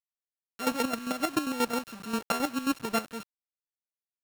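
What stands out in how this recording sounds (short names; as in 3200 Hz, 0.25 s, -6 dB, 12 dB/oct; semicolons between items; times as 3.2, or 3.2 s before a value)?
a buzz of ramps at a fixed pitch in blocks of 32 samples; chopped level 7.5 Hz, depth 65%, duty 40%; a quantiser's noise floor 8-bit, dither none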